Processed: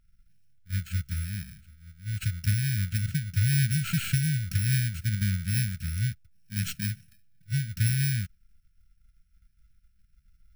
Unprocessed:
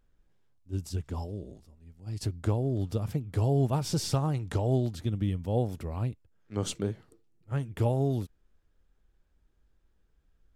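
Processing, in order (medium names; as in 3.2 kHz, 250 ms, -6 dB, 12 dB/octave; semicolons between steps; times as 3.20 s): bit-reversed sample order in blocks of 64 samples; treble shelf 5.6 kHz -9 dB; in parallel at -2 dB: level held to a coarse grid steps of 22 dB; on the sum: brick-wall FIR band-stop 220–1300 Hz; trim +3 dB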